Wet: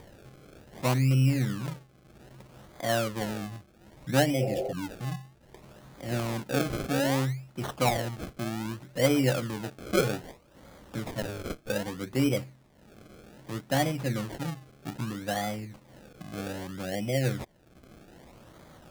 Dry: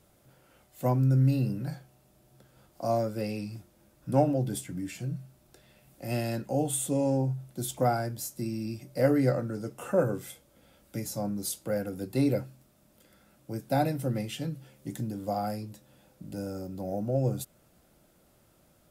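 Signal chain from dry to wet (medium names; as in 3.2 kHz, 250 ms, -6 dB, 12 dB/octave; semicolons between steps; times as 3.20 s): 11.22–11.70 s: comb filter that takes the minimum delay 2.2 ms; upward compressor, threshold -40 dBFS; decimation with a swept rate 32×, swing 100% 0.63 Hz; 4.43–4.70 s: spectral replace 360–1700 Hz before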